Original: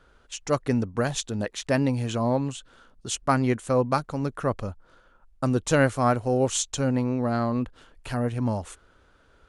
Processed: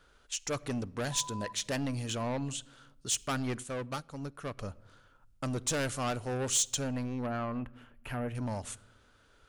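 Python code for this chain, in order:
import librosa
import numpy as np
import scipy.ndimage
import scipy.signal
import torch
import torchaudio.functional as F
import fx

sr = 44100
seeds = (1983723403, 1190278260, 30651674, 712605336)

y = 10.0 ** (-23.0 / 20.0) * np.tanh(x / 10.0 ** (-23.0 / 20.0))
y = fx.high_shelf(y, sr, hz=2300.0, db=9.5)
y = fx.dmg_tone(y, sr, hz=1000.0, level_db=-35.0, at=(1.11, 1.51), fade=0.02)
y = fx.band_shelf(y, sr, hz=5800.0, db=-15.5, octaves=1.7, at=(7.26, 8.35))
y = fx.room_shoebox(y, sr, seeds[0], volume_m3=3600.0, walls='furnished', distance_m=0.37)
y = fx.upward_expand(y, sr, threshold_db=-37.0, expansion=1.5, at=(3.62, 4.57), fade=0.02)
y = y * 10.0 ** (-6.5 / 20.0)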